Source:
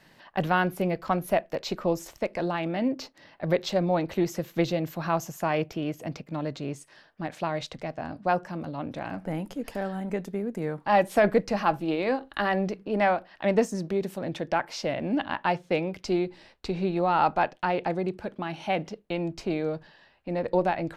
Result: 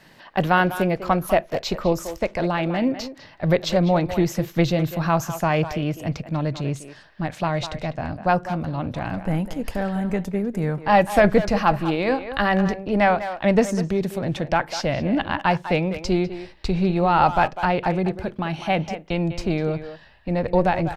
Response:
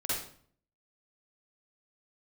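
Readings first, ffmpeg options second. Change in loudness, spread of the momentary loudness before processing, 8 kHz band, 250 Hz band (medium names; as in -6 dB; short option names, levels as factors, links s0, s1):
+6.0 dB, 10 LU, +6.0 dB, +6.5 dB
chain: -filter_complex "[0:a]asubboost=boost=4:cutoff=140,asplit=2[s0][s1];[s1]adelay=200,highpass=300,lowpass=3400,asoftclip=type=hard:threshold=0.112,volume=0.316[s2];[s0][s2]amix=inputs=2:normalize=0,volume=2"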